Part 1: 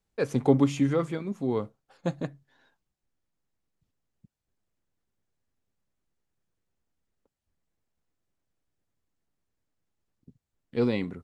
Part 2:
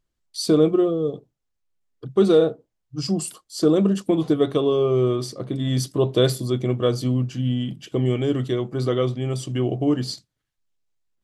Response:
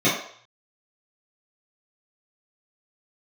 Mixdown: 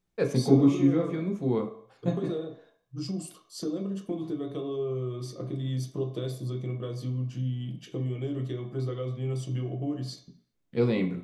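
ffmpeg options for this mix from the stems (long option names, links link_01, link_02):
-filter_complex "[0:a]volume=-3dB,asplit=2[link_01][link_02];[link_02]volume=-20.5dB[link_03];[1:a]acompressor=threshold=-27dB:ratio=5,volume=-9.5dB,asplit=3[link_04][link_05][link_06];[link_05]volume=-19.5dB[link_07];[link_06]apad=whole_len=495272[link_08];[link_01][link_08]sidechaincompress=threshold=-47dB:ratio=8:attack=11:release=147[link_09];[2:a]atrim=start_sample=2205[link_10];[link_03][link_07]amix=inputs=2:normalize=0[link_11];[link_11][link_10]afir=irnorm=-1:irlink=0[link_12];[link_09][link_04][link_12]amix=inputs=3:normalize=0"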